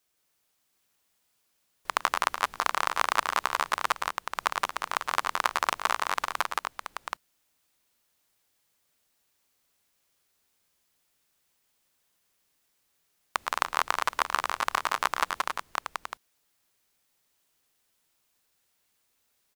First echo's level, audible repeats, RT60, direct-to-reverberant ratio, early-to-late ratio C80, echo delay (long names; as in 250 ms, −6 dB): −15.5 dB, 3, no reverb audible, no reverb audible, no reverb audible, 109 ms